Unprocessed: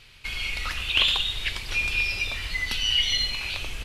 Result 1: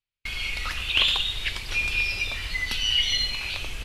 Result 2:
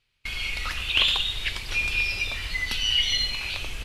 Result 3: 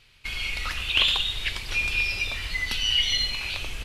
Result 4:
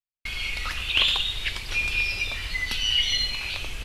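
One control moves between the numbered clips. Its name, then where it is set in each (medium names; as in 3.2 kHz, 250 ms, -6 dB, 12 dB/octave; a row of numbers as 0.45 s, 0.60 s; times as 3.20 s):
gate, range: -41 dB, -22 dB, -6 dB, -55 dB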